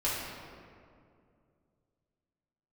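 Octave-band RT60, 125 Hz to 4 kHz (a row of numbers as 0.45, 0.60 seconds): 3.1, 2.9, 2.6, 2.1, 1.7, 1.2 seconds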